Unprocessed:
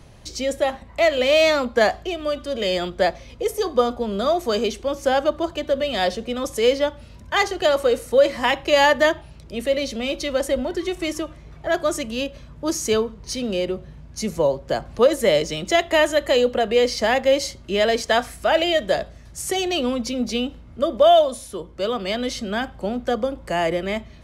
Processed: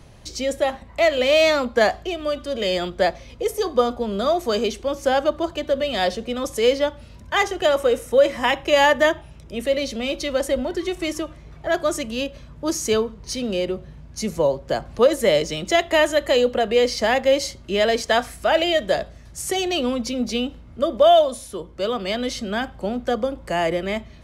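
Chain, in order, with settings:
0:07.36–0:09.63: notch filter 4,400 Hz, Q 5.1

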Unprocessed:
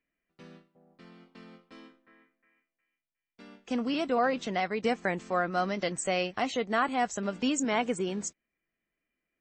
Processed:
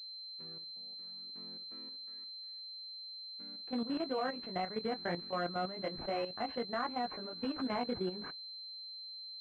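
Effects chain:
chorus effect 0.29 Hz, delay 16.5 ms, depth 6.9 ms
output level in coarse steps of 11 dB
switching amplifier with a slow clock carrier 4,100 Hz
level −1 dB

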